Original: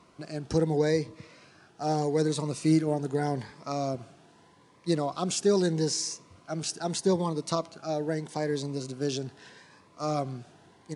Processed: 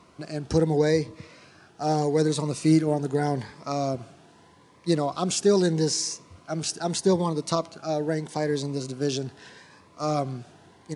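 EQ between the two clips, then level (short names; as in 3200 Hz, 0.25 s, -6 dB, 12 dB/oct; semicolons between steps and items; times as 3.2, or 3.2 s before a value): bell 81 Hz +6.5 dB 0.28 oct; +3.5 dB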